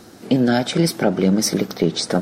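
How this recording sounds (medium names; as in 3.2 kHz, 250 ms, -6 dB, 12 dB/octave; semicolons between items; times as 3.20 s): noise floor -44 dBFS; spectral tilt -5.0 dB/octave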